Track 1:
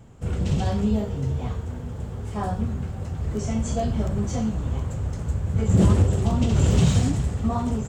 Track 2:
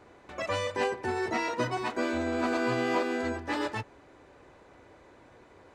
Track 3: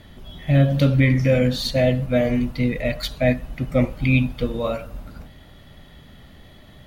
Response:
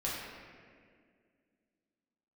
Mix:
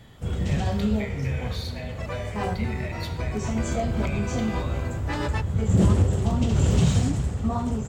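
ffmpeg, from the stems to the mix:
-filter_complex "[0:a]volume=-1.5dB[a];[1:a]adelay=1600,volume=3dB[b];[2:a]highpass=f=710:w=0.5412,highpass=f=710:w=1.3066,acompressor=threshold=-32dB:ratio=6,volume=-8dB,asplit=3[c][d][e];[d]volume=-5.5dB[f];[e]apad=whole_len=324126[g];[b][g]sidechaincompress=threshold=-51dB:ratio=8:attack=25:release=623[h];[3:a]atrim=start_sample=2205[i];[f][i]afir=irnorm=-1:irlink=0[j];[a][h][c][j]amix=inputs=4:normalize=0"

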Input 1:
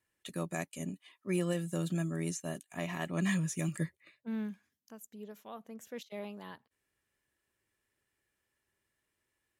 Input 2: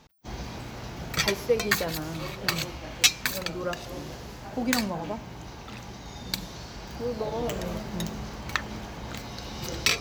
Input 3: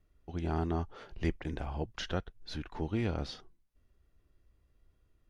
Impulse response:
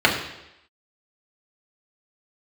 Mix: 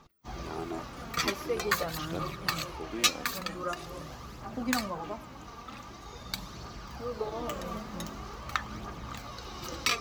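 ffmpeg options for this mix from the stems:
-filter_complex "[0:a]adelay=200,volume=-15dB[a];[1:a]equalizer=f=1.2k:w=5.8:g=13.5,flanger=delay=2.4:depth=1.7:regen=81:speed=1.8:shape=triangular,volume=-1.5dB[b];[2:a]highpass=240,volume=-3.5dB[c];[a][b][c]amix=inputs=3:normalize=0,aphaser=in_gain=1:out_gain=1:delay=4.5:decay=0.38:speed=0.45:type=triangular"

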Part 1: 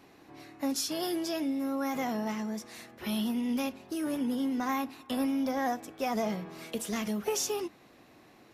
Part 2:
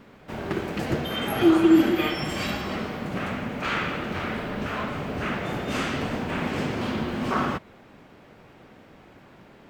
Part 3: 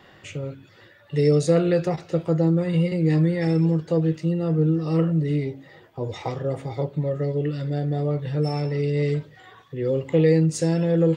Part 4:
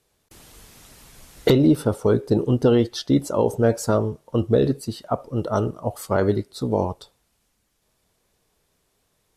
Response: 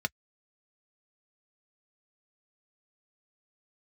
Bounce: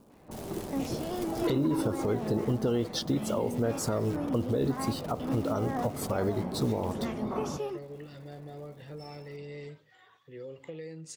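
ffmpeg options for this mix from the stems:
-filter_complex "[0:a]lowpass=f=1.6k:p=1,adelay=100,volume=-2dB[a];[1:a]lowpass=f=1k:w=0.5412,lowpass=f=1k:w=1.3066,aeval=exprs='0.398*sin(PI/2*2*val(0)/0.398)':c=same,volume=-17dB[b];[2:a]lowshelf=f=370:g=-11,acompressor=threshold=-28dB:ratio=6,adelay=550,volume=-11dB[c];[3:a]acrusher=bits=8:dc=4:mix=0:aa=0.000001,alimiter=limit=-14dB:level=0:latency=1:release=245,volume=0dB[d];[a][b][c][d]amix=inputs=4:normalize=0,alimiter=limit=-19.5dB:level=0:latency=1:release=195"

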